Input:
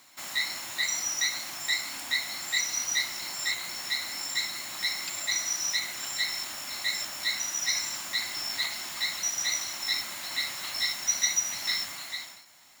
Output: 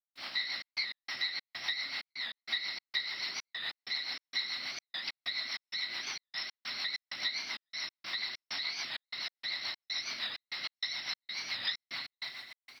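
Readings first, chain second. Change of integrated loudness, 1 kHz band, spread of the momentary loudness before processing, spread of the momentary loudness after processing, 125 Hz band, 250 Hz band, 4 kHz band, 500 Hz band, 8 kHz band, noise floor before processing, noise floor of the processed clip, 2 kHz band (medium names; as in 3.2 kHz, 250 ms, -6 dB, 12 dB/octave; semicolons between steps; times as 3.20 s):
-7.5 dB, -7.5 dB, 5 LU, 5 LU, no reading, -8.0 dB, -5.0 dB, -8.0 dB, -23.0 dB, -48 dBFS, under -85 dBFS, -6.0 dB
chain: bass shelf 440 Hz +9 dB; in parallel at -5.5 dB: saturation -24 dBFS, distortion -14 dB; on the sum: tilt EQ +3.5 dB/octave; hum notches 60/120/180/240/300/360/420/480/540/600 Hz; resampled via 11.025 kHz; feedback echo behind a low-pass 82 ms, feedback 84%, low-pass 3 kHz, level -10.5 dB; bit crusher 9-bit; delay 74 ms -6.5 dB; compression, threshold -23 dBFS, peak gain reduction 9 dB; rotary cabinet horn 7 Hz; trance gate ".xxx.x.xx" 97 bpm -60 dB; warped record 45 rpm, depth 160 cents; trim -6.5 dB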